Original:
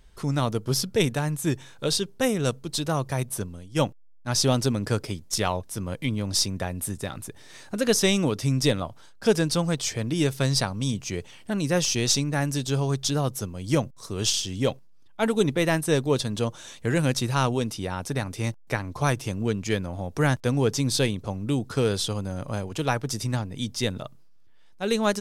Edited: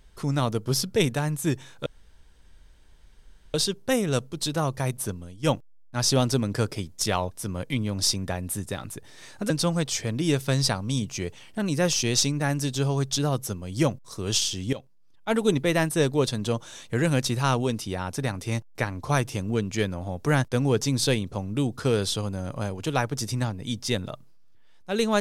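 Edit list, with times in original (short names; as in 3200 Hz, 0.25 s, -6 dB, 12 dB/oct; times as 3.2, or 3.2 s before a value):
1.86 insert room tone 1.68 s
7.82–9.42 cut
14.65–15.3 fade in, from -14.5 dB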